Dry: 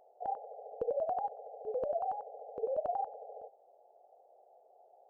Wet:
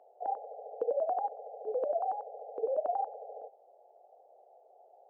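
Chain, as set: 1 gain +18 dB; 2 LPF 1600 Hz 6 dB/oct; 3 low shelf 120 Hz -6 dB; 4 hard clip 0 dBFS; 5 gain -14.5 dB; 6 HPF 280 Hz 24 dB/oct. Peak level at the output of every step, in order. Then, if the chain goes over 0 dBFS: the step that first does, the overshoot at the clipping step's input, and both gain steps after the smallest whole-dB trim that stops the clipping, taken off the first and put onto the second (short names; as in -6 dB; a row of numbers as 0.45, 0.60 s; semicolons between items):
-5.0, -6.0, -6.0, -6.0, -20.5, -20.5 dBFS; no overload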